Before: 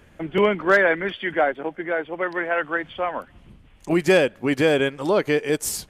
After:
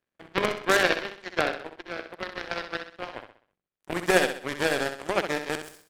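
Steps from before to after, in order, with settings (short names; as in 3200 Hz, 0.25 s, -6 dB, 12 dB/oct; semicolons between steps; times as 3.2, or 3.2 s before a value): per-bin compression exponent 0.6; power-law curve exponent 3; feedback echo 64 ms, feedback 41%, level -8 dB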